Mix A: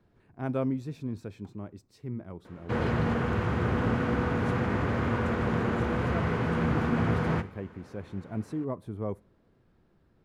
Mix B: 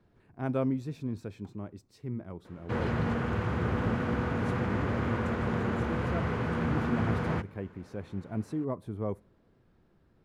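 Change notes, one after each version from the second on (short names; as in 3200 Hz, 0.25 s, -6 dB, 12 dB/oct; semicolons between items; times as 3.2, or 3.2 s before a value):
background: send off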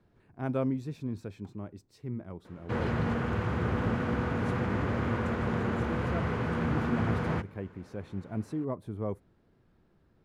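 reverb: off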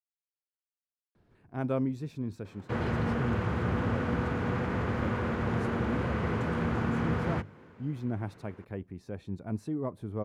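speech: entry +1.15 s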